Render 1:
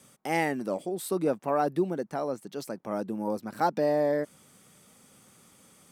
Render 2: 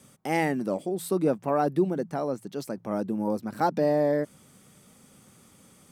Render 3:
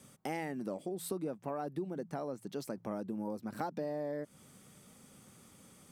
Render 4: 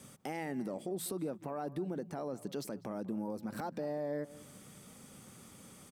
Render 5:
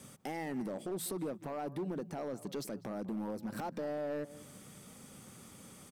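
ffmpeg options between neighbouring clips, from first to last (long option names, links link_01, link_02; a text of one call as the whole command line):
ffmpeg -i in.wav -af "lowshelf=frequency=280:gain=7.5,bandreject=frequency=56.14:width_type=h:width=4,bandreject=frequency=112.28:width_type=h:width=4,bandreject=frequency=168.42:width_type=h:width=4" out.wav
ffmpeg -i in.wav -af "acompressor=threshold=-32dB:ratio=6,volume=-3dB" out.wav
ffmpeg -i in.wav -filter_complex "[0:a]alimiter=level_in=9dB:limit=-24dB:level=0:latency=1:release=94,volume=-9dB,asplit=2[link_01][link_02];[link_02]adelay=197,lowpass=frequency=2300:poles=1,volume=-17.5dB,asplit=2[link_03][link_04];[link_04]adelay=197,lowpass=frequency=2300:poles=1,volume=0.25[link_05];[link_01][link_03][link_05]amix=inputs=3:normalize=0,volume=4dB" out.wav
ffmpeg -i in.wav -af "asoftclip=type=hard:threshold=-34dB,volume=1dB" out.wav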